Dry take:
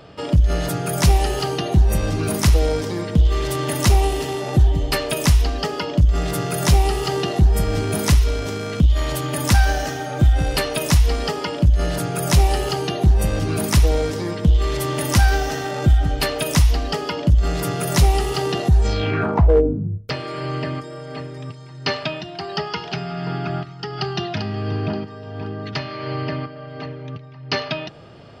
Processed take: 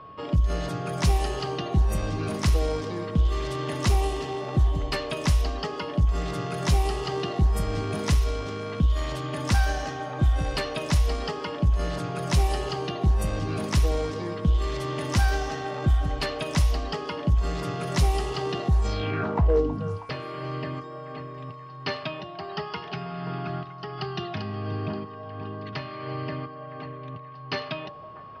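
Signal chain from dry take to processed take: whine 1100 Hz -36 dBFS; low-pass opened by the level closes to 2800 Hz, open at -9.5 dBFS; delay with a stepping band-pass 0.32 s, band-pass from 640 Hz, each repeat 0.7 oct, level -11 dB; gain -7 dB

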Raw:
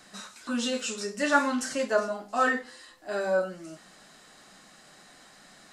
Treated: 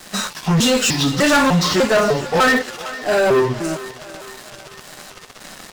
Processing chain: trilling pitch shifter -6.5 st, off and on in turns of 0.3 s; low shelf 71 Hz +8.5 dB; in parallel at -3 dB: compressor, threshold -43 dBFS, peak gain reduction 24 dB; on the sum: sample leveller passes 5; thinning echo 0.453 s, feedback 63%, high-pass 420 Hz, level -15 dB; gain -1.5 dB

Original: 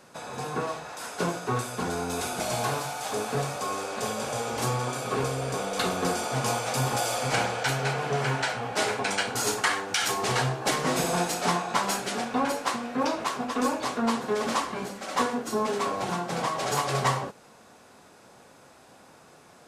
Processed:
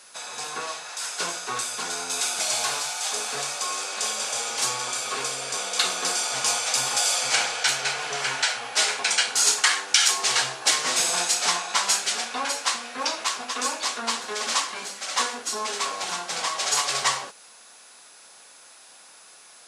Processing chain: weighting filter ITU-R 468; whine 10000 Hz -52 dBFS; gain -1 dB

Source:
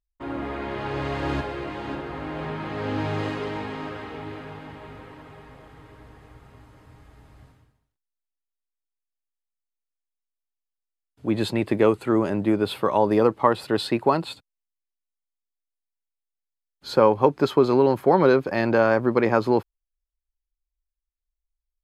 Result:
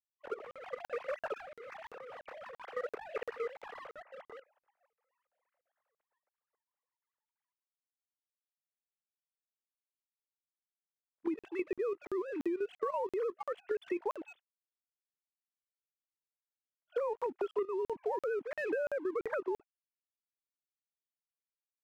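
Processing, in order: sine-wave speech; gate -44 dBFS, range -23 dB; low shelf 210 Hz +2 dB; level quantiser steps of 12 dB; sample leveller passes 1; compressor 10:1, threshold -32 dBFS, peak gain reduction 20.5 dB; crackling interface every 0.34 s, samples 2048, zero, from 0.51

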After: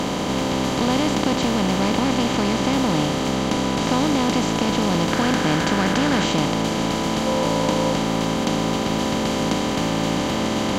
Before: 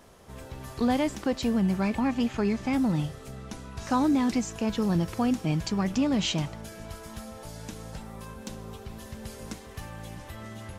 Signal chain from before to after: per-bin compression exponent 0.2; 5.11–6.24 bell 1600 Hz +9.5 dB 0.49 oct; 7.26–7.93 small resonant body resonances 540/950 Hz, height 9 dB; gain -1.5 dB

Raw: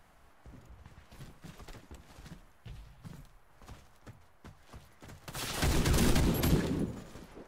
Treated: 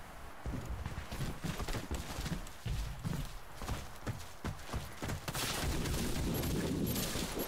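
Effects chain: limiter -24.5 dBFS, peak gain reduction 9.5 dB; thin delay 0.524 s, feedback 37%, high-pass 3000 Hz, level -4.5 dB; reverse; compressor 12:1, threshold -45 dBFS, peak gain reduction 17 dB; reverse; gain +12.5 dB

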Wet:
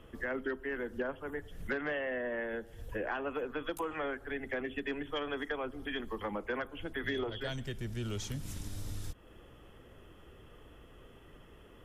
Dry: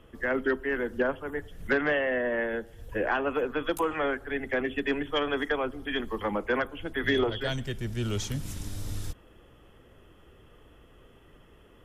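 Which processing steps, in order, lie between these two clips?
compressor 2:1, threshold -40 dBFS, peak gain reduction 10.5 dB

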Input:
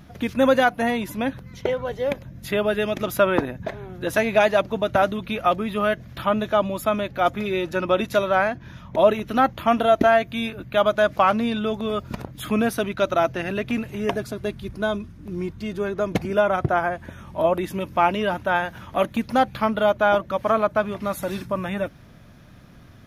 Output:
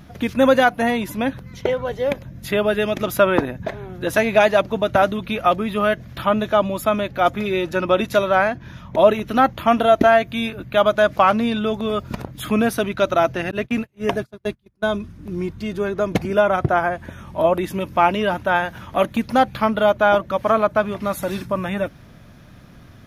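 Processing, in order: 13.51–14.86 gate -26 dBFS, range -35 dB; gain +3 dB

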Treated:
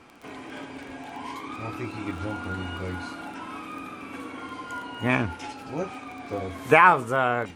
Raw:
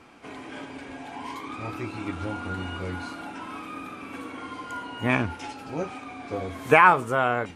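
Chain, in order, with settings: crackle 16/s -36 dBFS

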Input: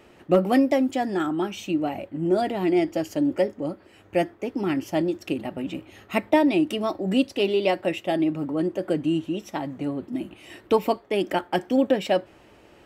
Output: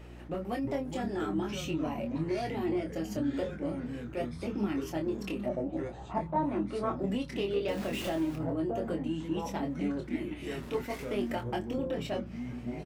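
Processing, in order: 7.68–8.36 zero-crossing step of -28 dBFS; compressor, threshold -29 dBFS, peak gain reduction 15 dB; flange 0.4 Hz, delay 1.9 ms, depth 8.8 ms, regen -49%; soft clip -26 dBFS, distortion -22 dB; 5.45–6.97 synth low-pass 590 Hz -> 1500 Hz, resonance Q 3.6; echoes that change speed 0.252 s, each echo -5 st, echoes 3, each echo -6 dB; doubler 25 ms -5 dB; hum 60 Hz, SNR 15 dB; attack slew limiter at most 260 dB/s; gain +1.5 dB

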